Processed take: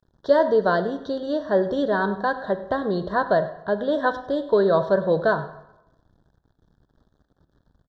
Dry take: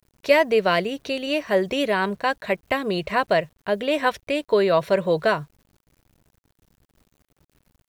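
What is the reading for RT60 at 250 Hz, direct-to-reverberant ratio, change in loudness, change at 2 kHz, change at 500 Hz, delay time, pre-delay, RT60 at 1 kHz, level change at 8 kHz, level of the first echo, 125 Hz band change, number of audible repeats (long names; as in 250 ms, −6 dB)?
0.85 s, 10.0 dB, 0.0 dB, −3.5 dB, +0.5 dB, 101 ms, 20 ms, 0.90 s, can't be measured, −17.0 dB, +1.0 dB, 1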